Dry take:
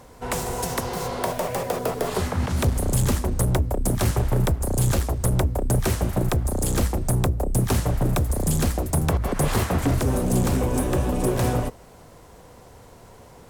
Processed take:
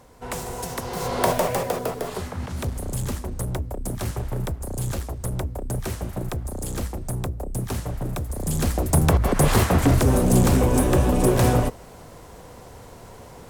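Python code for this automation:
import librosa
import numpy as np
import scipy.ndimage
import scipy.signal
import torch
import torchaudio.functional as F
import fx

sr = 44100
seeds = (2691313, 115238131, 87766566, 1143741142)

y = fx.gain(x, sr, db=fx.line((0.8, -4.0), (1.29, 6.0), (2.24, -6.5), (8.29, -6.5), (8.94, 4.0)))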